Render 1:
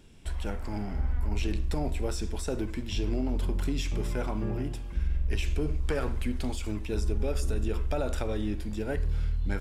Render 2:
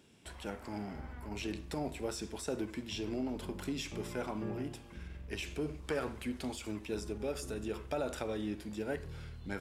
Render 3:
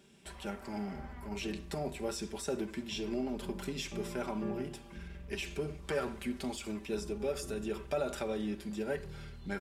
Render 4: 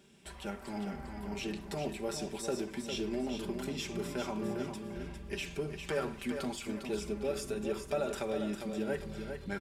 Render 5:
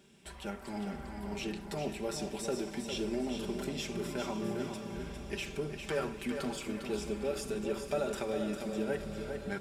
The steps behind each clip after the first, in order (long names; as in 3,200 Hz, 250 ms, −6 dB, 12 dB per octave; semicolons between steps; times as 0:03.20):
Bessel high-pass filter 170 Hz, order 2; level −3.5 dB
comb filter 5.1 ms, depth 63%
repeating echo 403 ms, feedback 33%, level −7 dB
feedback delay with all-pass diffusion 528 ms, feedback 67%, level −12 dB